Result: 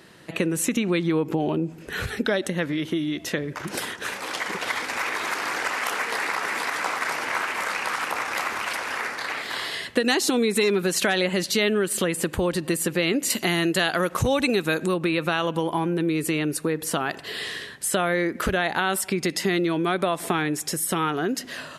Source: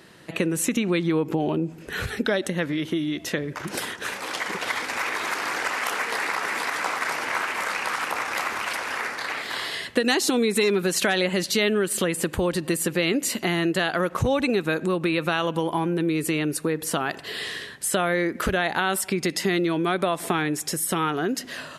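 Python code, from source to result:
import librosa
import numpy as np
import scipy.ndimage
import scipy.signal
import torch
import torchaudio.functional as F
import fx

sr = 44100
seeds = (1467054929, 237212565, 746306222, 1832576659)

y = fx.high_shelf(x, sr, hz=3700.0, db=8.5, at=(13.3, 14.94))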